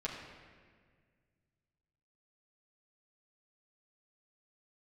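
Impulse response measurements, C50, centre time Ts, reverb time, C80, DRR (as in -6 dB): 4.0 dB, 57 ms, 1.8 s, 5.0 dB, -6.0 dB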